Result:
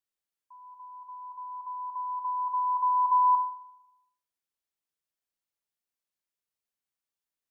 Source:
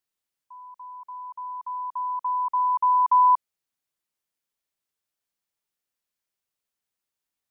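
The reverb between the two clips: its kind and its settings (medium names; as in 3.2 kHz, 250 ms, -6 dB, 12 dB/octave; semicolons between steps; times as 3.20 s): Schroeder reverb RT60 0.87 s, DRR 10 dB; trim -6.5 dB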